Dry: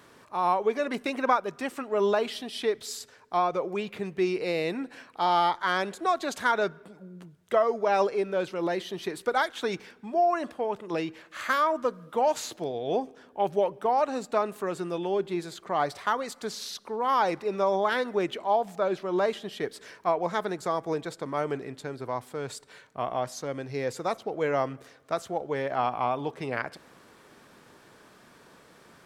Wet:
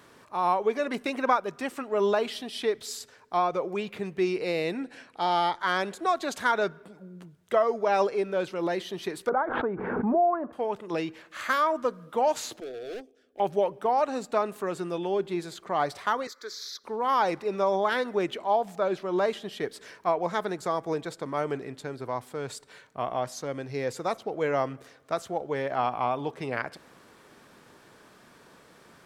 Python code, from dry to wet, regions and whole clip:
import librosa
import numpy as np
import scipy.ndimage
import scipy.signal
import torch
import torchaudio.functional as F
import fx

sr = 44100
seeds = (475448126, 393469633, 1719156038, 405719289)

y = fx.chain(x, sr, fx.brickwall_lowpass(high_hz=12000.0),
    fx.peak_eq(hz=1100.0, db=-5.5, octaves=0.47), at=(4.7, 5.6))
y = fx.chain(y, sr, fx.lowpass(hz=1300.0, slope=24),
    fx.pre_swell(db_per_s=34.0), at=(9.29, 10.53))
y = fx.chain(y, sr, fx.transient(attack_db=-3, sustain_db=-10),
    fx.clip_hard(threshold_db=-33.0),
    fx.fixed_phaser(hz=390.0, stages=4), at=(12.6, 13.4))
y = fx.chain(y, sr, fx.highpass(hz=370.0, slope=24),
    fx.fixed_phaser(hz=2800.0, stages=6), at=(16.27, 16.84))